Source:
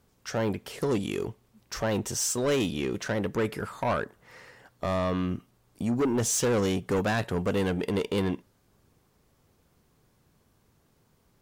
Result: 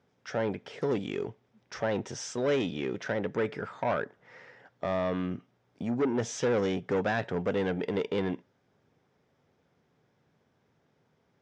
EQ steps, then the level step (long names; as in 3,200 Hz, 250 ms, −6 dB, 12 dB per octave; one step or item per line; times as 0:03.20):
loudspeaker in its box 150–4,900 Hz, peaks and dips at 210 Hz −4 dB, 330 Hz −4 dB, 1,100 Hz −6 dB, 2,800 Hz −5 dB, 4,300 Hz −10 dB
0.0 dB